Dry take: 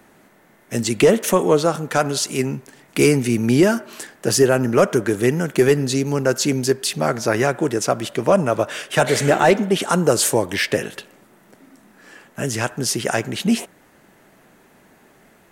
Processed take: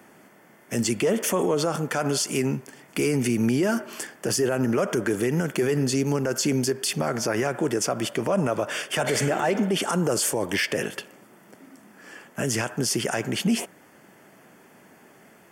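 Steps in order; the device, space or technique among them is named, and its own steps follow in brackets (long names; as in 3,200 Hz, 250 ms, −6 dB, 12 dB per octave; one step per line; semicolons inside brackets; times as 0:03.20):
PA system with an anti-feedback notch (high-pass filter 110 Hz; Butterworth band-reject 3,900 Hz, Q 6.6; brickwall limiter −15 dBFS, peak gain reduction 11 dB)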